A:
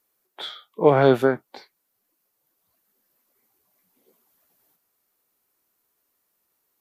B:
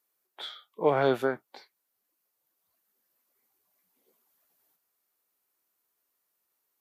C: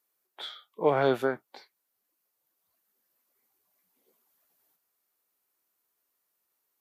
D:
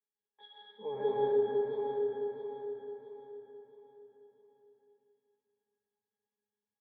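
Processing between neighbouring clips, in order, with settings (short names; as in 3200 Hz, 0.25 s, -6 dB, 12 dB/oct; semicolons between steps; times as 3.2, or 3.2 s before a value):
low shelf 350 Hz -7.5 dB; gain -5.5 dB
nothing audible
octave resonator G#, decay 0.22 s; feedback echo 0.665 s, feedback 39%, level -6 dB; reverb RT60 2.6 s, pre-delay 85 ms, DRR -4.5 dB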